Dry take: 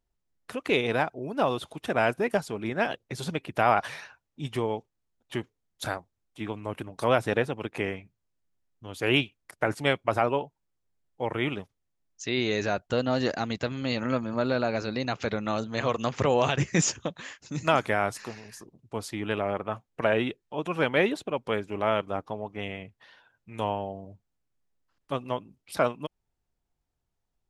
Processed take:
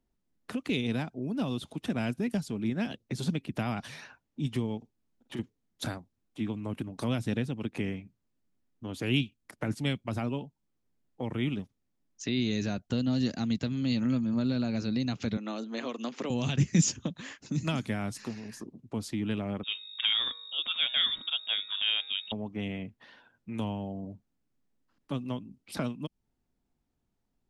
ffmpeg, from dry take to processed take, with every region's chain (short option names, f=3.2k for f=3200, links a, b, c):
-filter_complex "[0:a]asettb=1/sr,asplit=3[a][b][c];[a]atrim=end=4.774[d];[b]atrim=start=4.77:end=5.39,asetpts=PTS-STARTPTS,afade=t=in:d=0.004:c=qsin,afade=t=out:st=0.616:d=0.004:c=qsin,acompressor=threshold=-40dB:ratio=4:attack=3.2:release=140:knee=1:detection=peak,asplit=2[e][f];[f]adelay=48,volume=-9dB[g];[e][g]amix=inputs=2:normalize=0,atrim=end_sample=27342[h];[c]atrim=start=5.386[i];[d][h]acrossfade=d=0.004:c1=hsin:c2=qsin[j];[j][i]acrossfade=d=0.004:c1=qsin:c2=hsin,asettb=1/sr,asplit=3[k][l][m];[k]atrim=end=15.374[n];[l]atrim=start=15.37:end=16.3,asetpts=PTS-STARTPTS,afade=t=in:d=0.004:c=qsin,afade=t=out:st=0.926:d=0.004:c=qsin,highpass=f=280:w=0.5412,highpass=f=280:w=1.3066,highshelf=f=6.4k:g=-8.5[o];[m]atrim=start=16.296[p];[n][o]acrossfade=d=0.004:c1=hsin:c2=qsin[q];[q][p]acrossfade=d=0.004:c1=qsin:c2=hsin,asettb=1/sr,asplit=3[r][s][t];[r]atrim=end=19.634[u];[s]atrim=start=19.63:end=22.32,asetpts=PTS-STARTPTS,afade=t=in:d=0.004:c=qsin,afade=t=out:st=2.686:d=0.004:c=qsin,aeval=exprs='val(0)+0.00631*(sin(2*PI*50*n/s)+sin(2*PI*2*50*n/s)/2+sin(2*PI*3*50*n/s)/3+sin(2*PI*4*50*n/s)/4+sin(2*PI*5*50*n/s)/5)':c=same,lowpass=f=3.2k:t=q:w=0.5098,lowpass=f=3.2k:t=q:w=0.6013,lowpass=f=3.2k:t=q:w=0.9,lowpass=f=3.2k:t=q:w=2.563,afreqshift=-3800,bandreject=f=159.3:t=h:w=4,bandreject=f=318.6:t=h:w=4,bandreject=f=477.9:t=h:w=4,bandreject=f=637.2:t=h:w=4,bandreject=f=796.5:t=h:w=4,bandreject=f=955.8:t=h:w=4,bandreject=f=1.1151k:t=h:w=4,bandreject=f=1.2744k:t=h:w=4,bandreject=f=1.4337k:t=h:w=4,bandreject=f=1.593k:t=h:w=4,bandreject=f=1.7523k:t=h:w=4,bandreject=f=1.9116k:t=h:w=4,bandreject=f=2.0709k:t=h:w=4,bandreject=f=2.2302k:t=h:w=4,bandreject=f=2.3895k:t=h:w=4,bandreject=f=2.5488k:t=h:w=4[v];[t]atrim=start=22.316[w];[u][v]acrossfade=d=0.004:c1=hsin:c2=qsin[x];[x][w]acrossfade=d=0.004:c1=qsin:c2=hsin,equalizer=f=240:w=1.3:g=11.5,acrossover=split=190|3000[y][z][aa];[z]acompressor=threshold=-38dB:ratio=4[ab];[y][ab][aa]amix=inputs=3:normalize=0,highshelf=f=8.5k:g=-6"